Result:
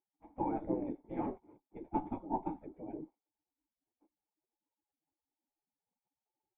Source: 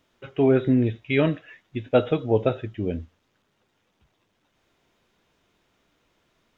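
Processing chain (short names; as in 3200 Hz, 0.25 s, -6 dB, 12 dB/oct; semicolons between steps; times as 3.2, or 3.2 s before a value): spectral gate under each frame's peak -20 dB weak; added harmonics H 4 -17 dB, 6 -14 dB, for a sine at -21 dBFS; vocal tract filter u; gain +17 dB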